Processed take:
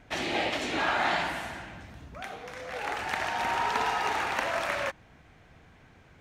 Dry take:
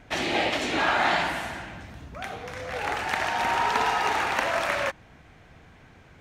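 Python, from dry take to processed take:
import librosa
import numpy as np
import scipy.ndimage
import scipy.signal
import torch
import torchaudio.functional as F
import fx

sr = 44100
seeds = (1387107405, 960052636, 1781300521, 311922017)

y = fx.peak_eq(x, sr, hz=88.0, db=-9.0, octaves=1.4, at=(2.21, 2.99))
y = y * 10.0 ** (-4.0 / 20.0)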